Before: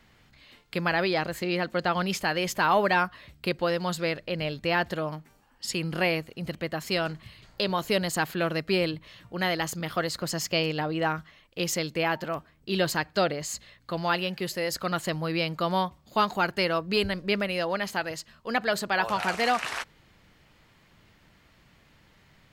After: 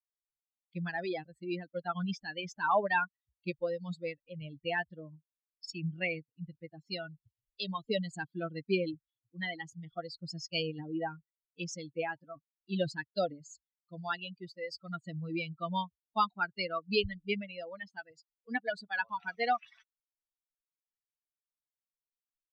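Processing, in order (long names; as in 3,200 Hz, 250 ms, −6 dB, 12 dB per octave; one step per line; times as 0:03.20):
spectral dynamics exaggerated over time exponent 3
low-pass filter 5,400 Hz 24 dB per octave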